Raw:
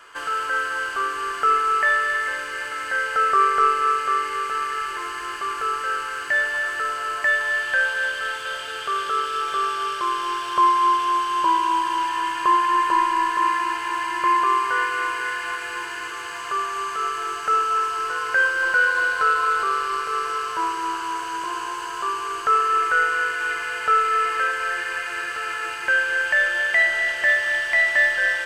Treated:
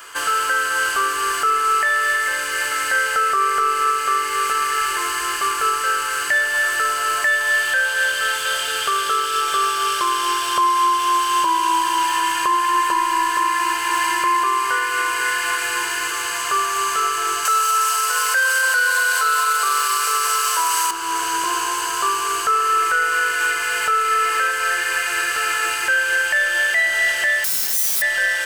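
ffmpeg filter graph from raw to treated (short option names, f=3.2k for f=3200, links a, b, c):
-filter_complex "[0:a]asettb=1/sr,asplit=3[a][b][c];[a]atrim=end=17.454[d];[b]atrim=start=17.45:end=20.91,asetpts=PTS-STARTPTS,afade=t=in:d=0.004:c=qsin,afade=t=out:st=3.456:d=0.004:c=qsin,highpass=f=470:w=0.5412,highpass=f=470:w=1.3066,acontrast=84,aemphasis=mode=production:type=cd[e];[c]atrim=start=20.906[f];[d][e]acrossfade=d=0.004:c1=hsin:c2=qsin[g];[g][f]acrossfade=d=0.004:c1=qsin:c2=hsin,asettb=1/sr,asplit=3[h][i][j];[h]atrim=end=27.444[k];[i]atrim=start=27.44:end=28.02,asetpts=PTS-STARTPTS,afade=t=in:d=0.004:c=qsin,afade=t=out:st=0.576:d=0.004:c=qsin,highpass=62,acompressor=threshold=-21dB:ratio=4:attack=3.2:release=140:knee=1:detection=peak,aeval=exprs='(mod(15.8*val(0)+1,2)-1)/15.8':c=same[l];[j]atrim=start=28.016[m];[k][l]acrossfade=d=0.004:c1=hsin:c2=qsin[n];[n][m]acrossfade=d=0.004:c1=qsin:c2=hsin,aemphasis=mode=production:type=75kf,alimiter=limit=-15dB:level=0:latency=1:release=348,volume=5dB"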